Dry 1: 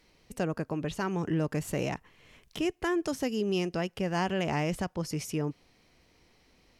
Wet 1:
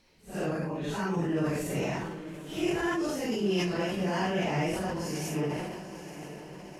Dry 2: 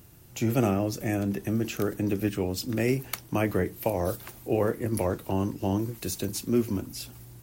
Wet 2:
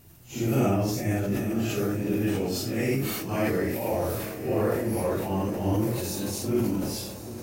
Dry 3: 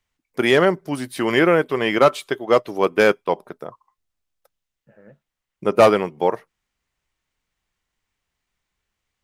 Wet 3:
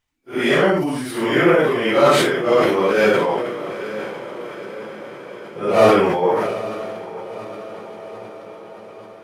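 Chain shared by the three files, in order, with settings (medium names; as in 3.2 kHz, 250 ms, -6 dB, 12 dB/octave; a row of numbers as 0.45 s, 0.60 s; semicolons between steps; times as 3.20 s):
phase randomisation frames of 200 ms; echo that smears into a reverb 904 ms, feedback 61%, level -12.5 dB; decay stretcher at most 33 dB/s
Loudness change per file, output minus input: +0.5 LU, +1.0 LU, +1.5 LU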